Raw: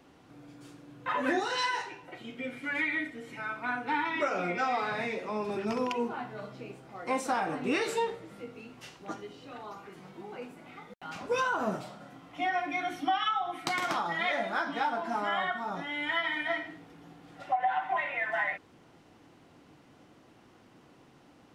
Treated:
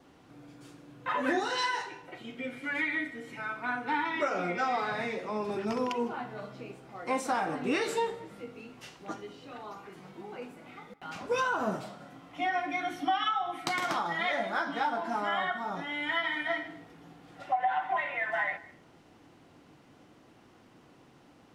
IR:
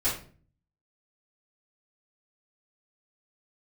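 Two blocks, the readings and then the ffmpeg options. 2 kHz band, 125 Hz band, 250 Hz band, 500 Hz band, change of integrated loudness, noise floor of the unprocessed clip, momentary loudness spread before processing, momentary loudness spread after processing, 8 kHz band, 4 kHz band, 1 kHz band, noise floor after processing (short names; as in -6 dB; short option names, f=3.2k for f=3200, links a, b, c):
0.0 dB, 0.0 dB, 0.0 dB, 0.0 dB, 0.0 dB, -59 dBFS, 16 LU, 16 LU, 0.0 dB, 0.0 dB, 0.0 dB, -59 dBFS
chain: -filter_complex "[0:a]adynamicequalizer=threshold=0.00178:dfrequency=2500:dqfactor=7:tfrequency=2500:tqfactor=7:attack=5:release=100:ratio=0.375:range=2.5:mode=cutabove:tftype=bell,asplit=2[a][b];[1:a]atrim=start_sample=2205,adelay=150[c];[b][c]afir=irnorm=-1:irlink=0,volume=-28.5dB[d];[a][d]amix=inputs=2:normalize=0"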